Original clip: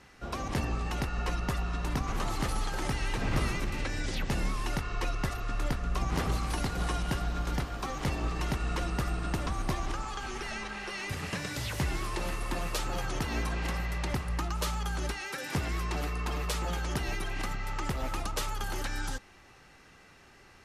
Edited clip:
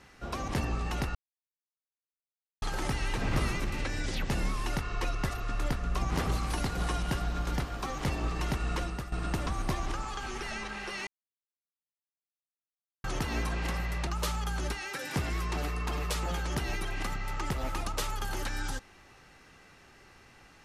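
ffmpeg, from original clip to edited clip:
-filter_complex "[0:a]asplit=7[a][b][c][d][e][f][g];[a]atrim=end=1.15,asetpts=PTS-STARTPTS,afade=t=out:st=1.146:d=0.004:c=hsin[h];[b]atrim=start=1.15:end=2.62,asetpts=PTS-STARTPTS,volume=0[i];[c]atrim=start=2.62:end=9.12,asetpts=PTS-STARTPTS,afade=t=in:d=0.004:c=hsin,afade=t=out:st=6.15:d=0.35:silence=0.223872[j];[d]atrim=start=9.12:end=11.07,asetpts=PTS-STARTPTS,afade=t=in:d=0.004:c=hsin:silence=0.223872,afade=t=out:st=1.946:d=0.004:c=hsin[k];[e]atrim=start=11.07:end=13.04,asetpts=PTS-STARTPTS,volume=0[l];[f]atrim=start=13.04:end=14.072,asetpts=PTS-STARTPTS,afade=t=in:d=0.004:c=hsin[m];[g]atrim=start=14.458[n];[h][i][j][k][l][m]concat=n=6:v=0:a=1[o];[o][n]acrossfade=d=0.004:c1=hsin:c2=hsin"

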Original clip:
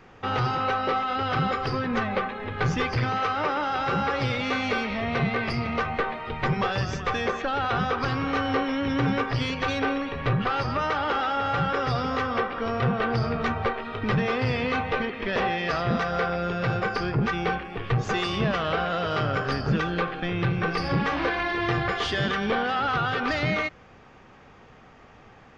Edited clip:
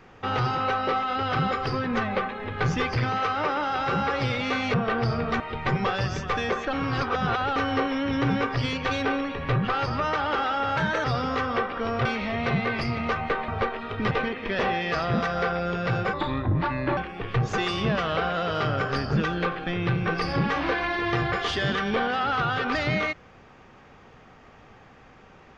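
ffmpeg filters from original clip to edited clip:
-filter_complex "[0:a]asplit=12[a][b][c][d][e][f][g][h][i][j][k][l];[a]atrim=end=4.742[m];[b]atrim=start=12.858:end=13.522[n];[c]atrim=start=6.168:end=7.502[o];[d]atrim=start=7.498:end=8.332,asetpts=PTS-STARTPTS,areverse[p];[e]atrim=start=8.328:end=11.544[q];[f]atrim=start=11.54:end=11.85,asetpts=PTS-STARTPTS,asetrate=50274,aresample=44100,atrim=end_sample=11992,asetpts=PTS-STARTPTS[r];[g]atrim=start=11.846:end=12.862[s];[h]atrim=start=4.738:end=6.172[t];[i]atrim=start=13.518:end=14.152[u];[j]atrim=start=14.878:end=16.904[v];[k]atrim=start=16.9:end=17.53,asetpts=PTS-STARTPTS,asetrate=33075,aresample=44100[w];[l]atrim=start=17.526[x];[m][n]acrossfade=d=0.004:c1=hsin:c2=hsin[y];[y][o]acrossfade=d=0.004:c1=hsin:c2=hsin[z];[z][p]acrossfade=d=0.004:c1=hsin:c2=hsin[aa];[aa][q]acrossfade=d=0.004:c1=hsin:c2=hsin[ab];[ab][r]acrossfade=d=0.004:c1=hsin:c2=hsin[ac];[ac][s]acrossfade=d=0.004:c1=hsin:c2=hsin[ad];[ad][t]acrossfade=d=0.004:c1=hsin:c2=hsin[ae];[ae][u]acrossfade=d=0.004:c1=hsin:c2=hsin[af];[af][v]acrossfade=d=0.004:c1=hsin:c2=hsin[ag];[ag][w]acrossfade=d=0.004:c1=hsin:c2=hsin[ah];[ah][x]acrossfade=d=0.004:c1=hsin:c2=hsin"

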